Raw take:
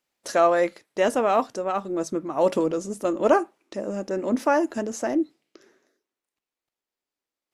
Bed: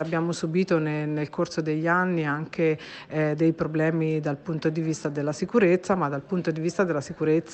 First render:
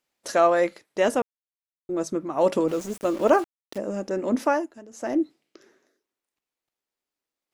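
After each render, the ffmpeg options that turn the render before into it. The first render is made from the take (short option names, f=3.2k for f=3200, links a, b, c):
-filter_complex "[0:a]asettb=1/sr,asplit=3[a][b][c];[a]atrim=end=2.684[d];[b]atrim=start=2.68:end=3.78,asetpts=PTS-STARTPTS,afade=t=in:d=0.004:c=qsin,afade=t=out:st=1.096:d=0.004:c=qsin,aeval=exprs='val(0)*gte(abs(val(0)),0.0141)':c=same[e];[c]atrim=start=3.776[f];[d][e]acrossfade=d=0.004:c1=hsin:c2=qsin[g];[g][f]acrossfade=d=0.004:c1=qsin:c2=hsin,asplit=5[h][i][j][k][l];[h]atrim=end=1.22,asetpts=PTS-STARTPTS,afade=t=out:st=1.216:d=0.004:c=hsin[m];[i]atrim=start=1.22:end=1.89,asetpts=PTS-STARTPTS,volume=0[n];[j]atrim=start=1.89:end=4.71,asetpts=PTS-STARTPTS,afade=t=in:d=0.004:c=hsin,afade=t=out:st=2.58:d=0.24:silence=0.149624[o];[k]atrim=start=4.71:end=4.91,asetpts=PTS-STARTPTS,volume=-16.5dB[p];[l]atrim=start=4.91,asetpts=PTS-STARTPTS,afade=t=in:d=0.24:silence=0.149624[q];[m][n][o][p][q]concat=n=5:v=0:a=1"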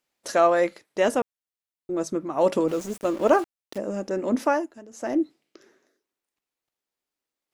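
-filter_complex "[0:a]asettb=1/sr,asplit=3[a][b][c];[a]atrim=end=2.974[d];[b]atrim=start=2.97:end=3.39,asetpts=PTS-STARTPTS,afade=t=in:d=0.004:c=qsin,afade=t=out:st=0.416:d=0.004:c=qsin,aeval=exprs='sgn(val(0))*max(abs(val(0))-0.00501,0)':c=same[e];[c]atrim=start=3.386[f];[d][e]acrossfade=d=0.004:c1=hsin:c2=qsin[g];[g][f]acrossfade=d=0.004:c1=qsin:c2=hsin"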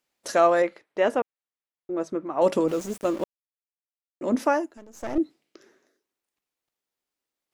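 -filter_complex "[0:a]asettb=1/sr,asplit=3[a][b][c];[a]atrim=end=0.624[d];[b]atrim=start=0.62:end=2.42,asetpts=PTS-STARTPTS,afade=t=in:d=0.004:c=qsin,afade=t=out:st=1.796:d=0.004:c=qsin,bass=f=250:g=-7,treble=f=4k:g=-14[e];[c]atrim=start=2.416[f];[d][e]acrossfade=d=0.004:c1=hsin:c2=qsin[g];[g][f]acrossfade=d=0.004:c1=qsin:c2=hsin,asettb=1/sr,asplit=3[h][i][j];[h]atrim=end=4.774[k];[i]atrim=start=4.77:end=5.18,asetpts=PTS-STARTPTS,afade=t=in:d=0.004:c=qsin,afade=t=out:st=0.406:d=0.004:c=qsin,aeval=exprs='if(lt(val(0),0),0.251*val(0),val(0))':c=same[l];[j]atrim=start=5.176[m];[k][l]acrossfade=d=0.004:c1=hsin:c2=qsin[n];[n][m]acrossfade=d=0.004:c1=qsin:c2=hsin,asplit=3[o][p][q];[o]atrim=end=3.24,asetpts=PTS-STARTPTS,afade=t=out:st=3.236:d=0.004:c=hsin[r];[p]atrim=start=3.24:end=4.21,asetpts=PTS-STARTPTS,volume=0[s];[q]atrim=start=4.21,asetpts=PTS-STARTPTS,afade=t=in:d=0.004:c=hsin[t];[r][s][t]concat=n=3:v=0:a=1"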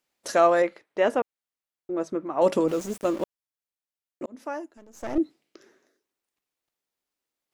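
-filter_complex "[0:a]asplit=2[a][b];[a]atrim=end=4.26,asetpts=PTS-STARTPTS,afade=t=out:st=4.256:d=0.004:c=hsin[c];[b]atrim=start=4.26,asetpts=PTS-STARTPTS,afade=t=in:d=0.89[d];[c][d]concat=n=2:v=0:a=1"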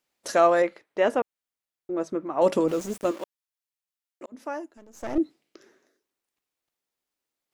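-filter_complex "[0:a]asettb=1/sr,asplit=3[a][b][c];[a]atrim=end=3.114[d];[b]atrim=start=3.11:end=4.32,asetpts=PTS-STARTPTS,afade=t=in:d=0.004:c=qsin,afade=t=out:st=1.206:d=0.004:c=qsin,highpass=f=910:p=1[e];[c]atrim=start=4.316[f];[d][e]acrossfade=d=0.004:c1=hsin:c2=qsin[g];[g][f]acrossfade=d=0.004:c1=qsin:c2=hsin"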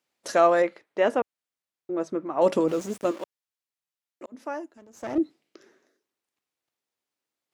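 -af "highpass=81,highshelf=f=9.9k:g=-6"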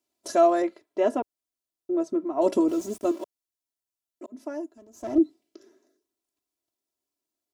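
-af "equalizer=f=1.9k:t=o:w=2:g=-11.5,aecho=1:1:3:0.84"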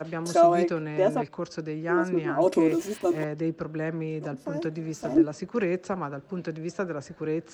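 -filter_complex "[1:a]volume=-7dB[a];[0:a][a]amix=inputs=2:normalize=0"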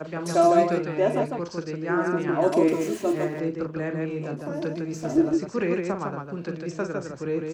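-af "aecho=1:1:40.82|154.5:0.398|0.631"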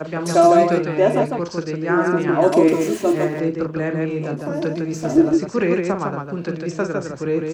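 -af "volume=6.5dB,alimiter=limit=-3dB:level=0:latency=1"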